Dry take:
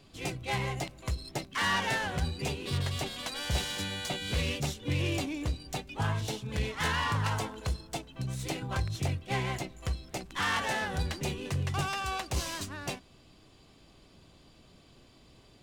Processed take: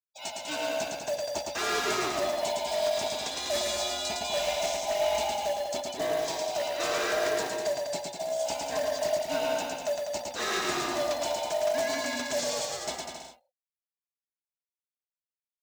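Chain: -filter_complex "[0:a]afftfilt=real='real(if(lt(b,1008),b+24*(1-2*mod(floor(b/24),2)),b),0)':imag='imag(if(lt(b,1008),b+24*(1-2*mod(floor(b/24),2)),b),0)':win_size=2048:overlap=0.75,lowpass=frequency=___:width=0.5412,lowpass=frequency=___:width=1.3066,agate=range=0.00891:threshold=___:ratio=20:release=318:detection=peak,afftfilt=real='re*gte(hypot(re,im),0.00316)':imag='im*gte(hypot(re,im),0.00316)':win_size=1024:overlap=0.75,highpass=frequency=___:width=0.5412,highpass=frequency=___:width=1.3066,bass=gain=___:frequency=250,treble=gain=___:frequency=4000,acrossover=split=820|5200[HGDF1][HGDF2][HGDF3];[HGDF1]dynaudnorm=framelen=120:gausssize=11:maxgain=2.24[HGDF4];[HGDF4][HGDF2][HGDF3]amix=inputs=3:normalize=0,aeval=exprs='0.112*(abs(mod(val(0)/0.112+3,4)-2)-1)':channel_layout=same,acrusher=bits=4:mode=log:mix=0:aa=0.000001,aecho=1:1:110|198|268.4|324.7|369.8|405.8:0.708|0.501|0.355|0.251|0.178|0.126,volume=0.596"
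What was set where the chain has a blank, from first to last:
8000, 8000, 0.00355, 51, 51, -12, 12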